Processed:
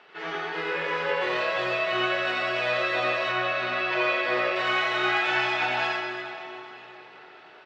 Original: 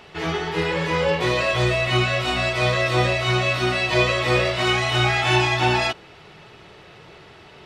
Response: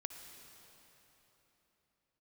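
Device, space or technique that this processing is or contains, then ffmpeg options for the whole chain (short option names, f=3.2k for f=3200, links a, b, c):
station announcement: -filter_complex "[0:a]highpass=360,lowpass=4k,equalizer=f=1.5k:t=o:w=0.59:g=6.5,aecho=1:1:87.46|221.6:0.794|0.282[a];[1:a]atrim=start_sample=2205[b];[a][b]afir=irnorm=-1:irlink=0,asettb=1/sr,asplit=3[c][d][e];[c]atrim=end=3.324[f];[d]atrim=start=3.32:end=4.56,asetpts=PTS-STARTPTS,afade=t=in:d=0.004:c=qsin,afade=t=out:st=1.236:d=0.004:c=qsin,highshelf=f=7.5k:g=-11.5[g];[e]atrim=start=4.556[h];[f][g]acrossfade=d=0.004:c1=hsin:c2=qsin[i];[i][h]acrossfade=d=0.004:c1=qsin:c2=hsin,volume=-5dB"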